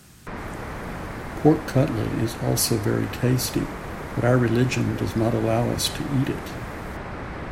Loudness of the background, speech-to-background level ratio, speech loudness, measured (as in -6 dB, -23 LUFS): -34.0 LUFS, 10.5 dB, -23.5 LUFS